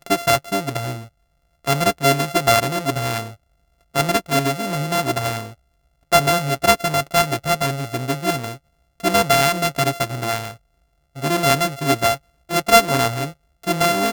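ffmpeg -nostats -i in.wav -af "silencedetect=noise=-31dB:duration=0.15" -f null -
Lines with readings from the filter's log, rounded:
silence_start: 1.04
silence_end: 1.65 | silence_duration: 0.60
silence_start: 3.31
silence_end: 3.95 | silence_duration: 0.63
silence_start: 5.51
silence_end: 6.12 | silence_duration: 0.61
silence_start: 8.55
silence_end: 9.00 | silence_duration: 0.45
silence_start: 10.54
silence_end: 11.17 | silence_duration: 0.63
silence_start: 12.16
silence_end: 12.50 | silence_duration: 0.34
silence_start: 13.30
silence_end: 13.63 | silence_duration: 0.33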